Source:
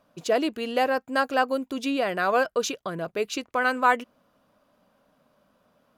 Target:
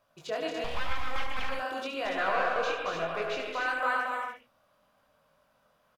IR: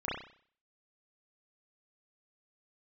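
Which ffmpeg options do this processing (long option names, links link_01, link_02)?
-filter_complex "[0:a]acompressor=threshold=-26dB:ratio=2,asettb=1/sr,asplit=3[link_01][link_02][link_03];[link_01]atrim=end=2.054[link_04];[link_02]atrim=start=2.05:end=3.39,asetpts=PTS-STARTPTS,afade=type=in:duration=0.004:curve=qsin,afade=type=out:start_time=1.336:duration=0.004:curve=qsin,asplit=2[link_05][link_06];[link_06]highpass=frequency=720:poles=1,volume=16dB,asoftclip=type=tanh:threshold=-17dB[link_07];[link_05][link_07]amix=inputs=2:normalize=0,lowpass=frequency=1700:poles=1,volume=-6dB[link_08];[link_03]atrim=start=3.386[link_09];[link_04][link_08]acrossfade=duration=0.004:curve1=hsin:curve2=qsin[link_10];[link_10][link_09]acrossfade=duration=0.004:curve1=qsin:curve2=hsin,aecho=1:1:227.4|285.7:0.501|0.447,flanger=delay=18:depth=7.2:speed=0.97,asettb=1/sr,asplit=3[link_11][link_12][link_13];[link_11]atrim=end=0.644[link_14];[link_12]atrim=start=0.64:end=1.49,asetpts=PTS-STARTPTS,afade=type=in:duration=0.004:curve=qsin,afade=type=out:start_time=0.846:duration=0.004:curve=qsin,aeval=exprs='abs(val(0))':channel_layout=same[link_15];[link_13]atrim=start=1.486[link_16];[link_14][link_15]acrossfade=duration=0.004:curve1=hsin:curve2=qsin[link_17];[link_17][link_16]acrossfade=duration=0.004:curve1=qsin:curve2=hsin,equalizer=frequency=250:width=0.81:gain=-12,acrossover=split=4300[link_18][link_19];[link_19]acompressor=threshold=-55dB:ratio=4:attack=1:release=60[link_20];[link_18][link_20]amix=inputs=2:normalize=0,asplit=2[link_21][link_22];[link_22]highshelf=frequency=5100:gain=9.5[link_23];[1:a]atrim=start_sample=2205,atrim=end_sample=3528,adelay=72[link_24];[link_23][link_24]afir=irnorm=-1:irlink=0,volume=-10dB[link_25];[link_21][link_25]amix=inputs=2:normalize=0"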